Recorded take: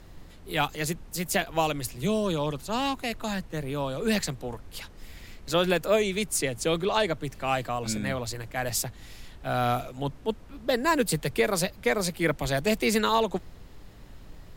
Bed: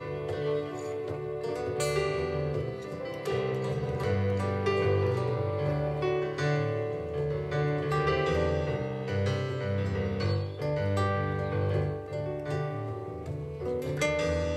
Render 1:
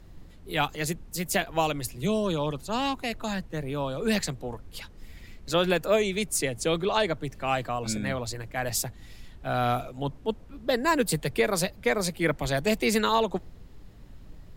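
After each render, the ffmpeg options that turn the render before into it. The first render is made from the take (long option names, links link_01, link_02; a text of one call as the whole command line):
ffmpeg -i in.wav -af "afftdn=noise_reduction=6:noise_floor=-48" out.wav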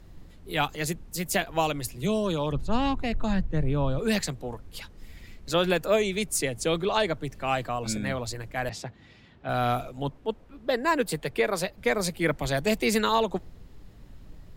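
ffmpeg -i in.wav -filter_complex "[0:a]asettb=1/sr,asplit=3[link_01][link_02][link_03];[link_01]atrim=end=2.524[link_04];[link_02]atrim=start=2.52:end=3.99,asetpts=PTS-STARTPTS,afade=type=in:duration=0.004:curve=qsin,afade=type=out:start_time=1.466:duration=0.004:curve=qsin,aemphasis=mode=reproduction:type=bsi[link_05];[link_03]atrim=start=3.986[link_06];[link_04][link_05]acrossfade=duration=0.004:curve1=hsin:curve2=qsin[link_07];[link_07][link_06]acrossfade=duration=0.004:curve1=qsin:curve2=hsin,asettb=1/sr,asplit=3[link_08][link_09][link_10];[link_08]atrim=end=8.694[link_11];[link_09]atrim=start=8.69:end=9.49,asetpts=PTS-STARTPTS,afade=type=in:duration=0.004:curve=qsin,afade=type=out:start_time=0.796:duration=0.004:curve=qsin,highpass=120,lowpass=3400[link_12];[link_10]atrim=start=9.486[link_13];[link_11][link_12]acrossfade=duration=0.004:curve1=hsin:curve2=qsin[link_14];[link_14][link_13]acrossfade=duration=0.004:curve1=qsin:curve2=hsin,asettb=1/sr,asplit=3[link_15][link_16][link_17];[link_15]atrim=end=10.094[link_18];[link_16]atrim=start=10.09:end=11.78,asetpts=PTS-STARTPTS,afade=type=in:duration=0.004:curve=qsin,afade=type=out:start_time=1.686:duration=0.004:curve=qsin,bass=frequency=250:gain=-6,treble=frequency=4000:gain=-6[link_19];[link_17]atrim=start=11.776[link_20];[link_18][link_19]acrossfade=duration=0.004:curve1=hsin:curve2=qsin[link_21];[link_21][link_20]acrossfade=duration=0.004:curve1=qsin:curve2=hsin" out.wav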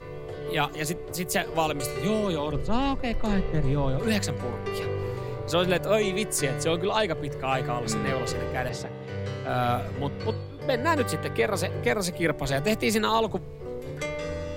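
ffmpeg -i in.wav -i bed.wav -filter_complex "[1:a]volume=-4dB[link_01];[0:a][link_01]amix=inputs=2:normalize=0" out.wav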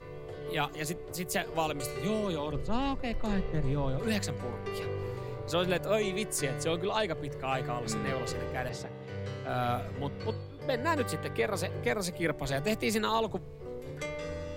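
ffmpeg -i in.wav -af "volume=-5.5dB" out.wav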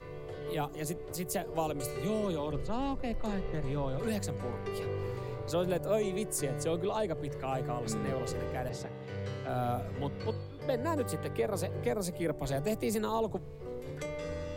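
ffmpeg -i in.wav -filter_complex "[0:a]acrossover=split=400|930|6700[link_01][link_02][link_03][link_04];[link_01]alimiter=level_in=4.5dB:limit=-24dB:level=0:latency=1,volume=-4.5dB[link_05];[link_03]acompressor=threshold=-46dB:ratio=6[link_06];[link_05][link_02][link_06][link_04]amix=inputs=4:normalize=0" out.wav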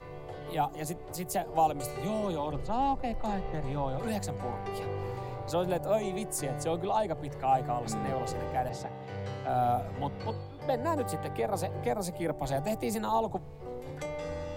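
ffmpeg -i in.wav -af "equalizer=frequency=800:width=4.1:gain=12.5,bandreject=frequency=430:width=12" out.wav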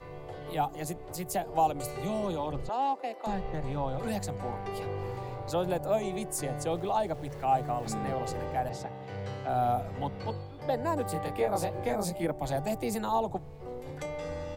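ffmpeg -i in.wav -filter_complex "[0:a]asettb=1/sr,asplit=3[link_01][link_02][link_03];[link_01]atrim=end=2.694[link_04];[link_02]atrim=start=2.69:end=3.27,asetpts=PTS-STARTPTS,afade=type=in:duration=0.004:curve=qsin,afade=type=out:start_time=0.576:duration=0.004:curve=qsin,highpass=frequency=330:width=0.5412,highpass=frequency=330:width=1.3066[link_05];[link_03]atrim=start=3.266[link_06];[link_04][link_05]acrossfade=duration=0.004:curve1=hsin:curve2=qsin[link_07];[link_07][link_06]acrossfade=duration=0.004:curve1=qsin:curve2=hsin,asettb=1/sr,asplit=3[link_08][link_09][link_10];[link_08]atrim=end=6.714[link_11];[link_09]atrim=start=6.71:end=7.92,asetpts=PTS-STARTPTS,afade=type=in:duration=0.004:curve=qsin,afade=type=out:start_time=1.206:duration=0.004:curve=qsin,aeval=exprs='val(0)*gte(abs(val(0)),0.00316)':channel_layout=same[link_12];[link_10]atrim=start=7.916[link_13];[link_11][link_12]acrossfade=duration=0.004:curve1=hsin:curve2=qsin[link_14];[link_14][link_13]acrossfade=duration=0.004:curve1=qsin:curve2=hsin,asplit=3[link_15][link_16][link_17];[link_15]afade=type=out:start_time=11.14:duration=0.02[link_18];[link_16]asplit=2[link_19][link_20];[link_20]adelay=24,volume=-2dB[link_21];[link_19][link_21]amix=inputs=2:normalize=0,afade=type=in:start_time=11.14:duration=0.02,afade=type=out:start_time=12.25:duration=0.02[link_22];[link_17]afade=type=in:start_time=12.25:duration=0.02[link_23];[link_18][link_22][link_23]amix=inputs=3:normalize=0" out.wav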